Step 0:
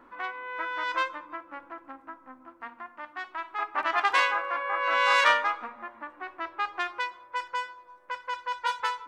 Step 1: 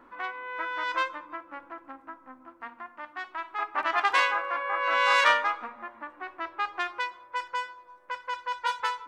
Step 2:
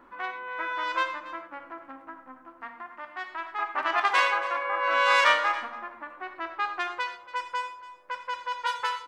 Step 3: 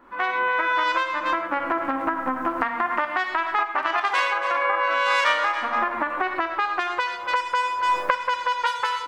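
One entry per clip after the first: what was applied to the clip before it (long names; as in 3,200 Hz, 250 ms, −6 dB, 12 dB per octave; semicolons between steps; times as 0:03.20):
no processing that can be heard
single-tap delay 279 ms −16.5 dB; reverb whose tail is shaped and stops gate 140 ms flat, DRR 7.5 dB
camcorder AGC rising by 61 dB per second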